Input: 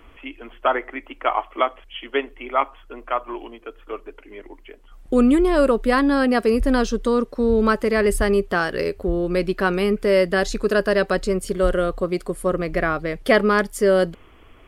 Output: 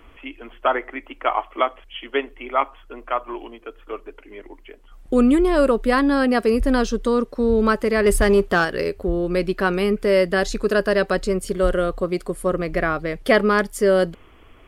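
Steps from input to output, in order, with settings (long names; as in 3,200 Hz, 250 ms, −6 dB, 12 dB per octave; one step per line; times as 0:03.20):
0:08.06–0:08.65: leveller curve on the samples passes 1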